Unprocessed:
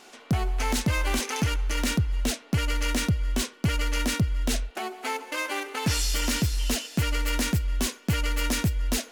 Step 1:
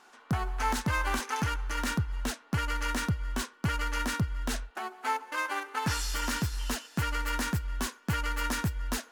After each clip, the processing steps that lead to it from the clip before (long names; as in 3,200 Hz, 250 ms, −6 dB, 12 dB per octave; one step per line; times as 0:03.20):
flat-topped bell 1,200 Hz +9 dB 1.3 octaves
expander for the loud parts 1.5 to 1, over −33 dBFS
level −4.5 dB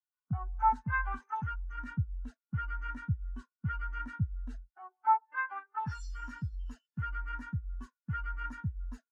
low-shelf EQ 350 Hz −4.5 dB
every bin expanded away from the loudest bin 2.5 to 1
level +3 dB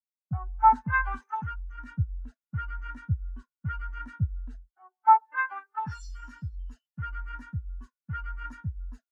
multiband upward and downward expander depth 70%
level +2 dB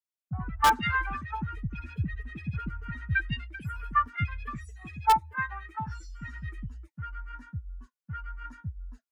delay with pitch and tempo change per echo 152 ms, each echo +5 semitones, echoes 2
in parallel at −6.5 dB: wrap-around overflow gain 9 dB
on the sum: level −6.5 dB